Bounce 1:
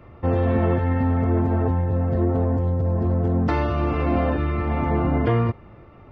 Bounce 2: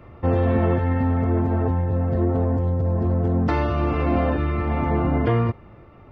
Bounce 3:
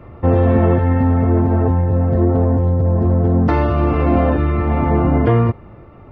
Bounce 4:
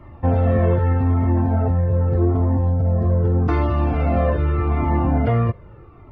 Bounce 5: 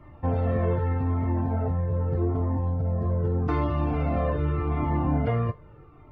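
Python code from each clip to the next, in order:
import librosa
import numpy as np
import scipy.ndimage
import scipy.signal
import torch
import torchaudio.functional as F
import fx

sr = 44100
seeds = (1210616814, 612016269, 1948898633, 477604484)

y1 = fx.rider(x, sr, range_db=10, speed_s=2.0)
y2 = fx.high_shelf(y1, sr, hz=2200.0, db=-8.0)
y2 = F.gain(torch.from_numpy(y2), 6.5).numpy()
y3 = fx.comb_cascade(y2, sr, direction='falling', hz=0.82)
y4 = fx.comb_fb(y3, sr, f0_hz=150.0, decay_s=0.16, harmonics='all', damping=0.0, mix_pct=70)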